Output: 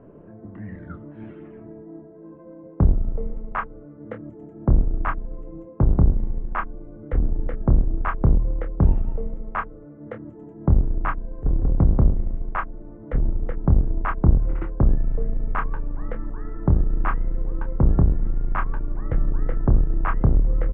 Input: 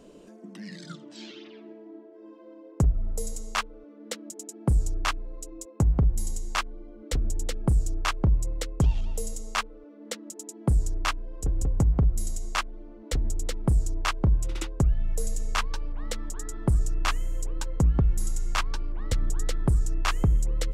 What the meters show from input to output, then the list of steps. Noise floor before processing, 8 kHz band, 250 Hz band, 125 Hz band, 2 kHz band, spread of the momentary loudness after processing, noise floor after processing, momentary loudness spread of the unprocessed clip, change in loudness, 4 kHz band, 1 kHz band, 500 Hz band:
−48 dBFS, below −40 dB, +5.5 dB, +4.5 dB, −0.5 dB, 19 LU, −43 dBFS, 18 LU, +4.5 dB, below −20 dB, +3.5 dB, +5.0 dB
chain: sub-octave generator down 1 octave, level −1 dB
inverse Chebyshev low-pass filter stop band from 4,300 Hz, stop band 50 dB
double-tracking delay 27 ms −8 dB
level +3 dB

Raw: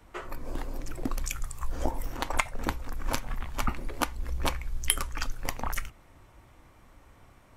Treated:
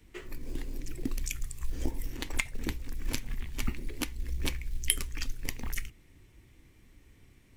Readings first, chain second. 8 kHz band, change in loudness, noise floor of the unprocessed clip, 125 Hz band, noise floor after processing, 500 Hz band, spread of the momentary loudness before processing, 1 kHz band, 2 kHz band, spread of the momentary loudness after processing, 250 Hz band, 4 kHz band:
−1.5 dB, −3.0 dB, −57 dBFS, −1.5 dB, −59 dBFS, −7.5 dB, 10 LU, −15.5 dB, −3.5 dB, 11 LU, −1.5 dB, −1.5 dB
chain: floating-point word with a short mantissa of 4 bits
flat-topped bell 890 Hz −14 dB
level −1.5 dB

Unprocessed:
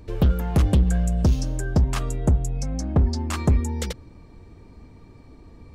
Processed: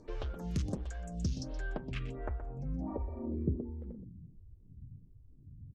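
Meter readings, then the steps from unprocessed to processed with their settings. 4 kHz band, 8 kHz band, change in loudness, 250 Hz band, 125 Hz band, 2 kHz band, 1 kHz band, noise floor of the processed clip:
−14.5 dB, −18.0 dB, −16.0 dB, −13.0 dB, −17.0 dB, −11.0 dB, −15.0 dB, −58 dBFS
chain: healed spectral selection 0:02.90–0:03.40, 600–9,100 Hz after
downward compressor, threshold −25 dBFS, peak gain reduction 10 dB
low-pass filter sweep 6,200 Hz → 130 Hz, 0:01.22–0:04.39
single-tap delay 123 ms −11 dB
phaser with staggered stages 1.4 Hz
level −5 dB

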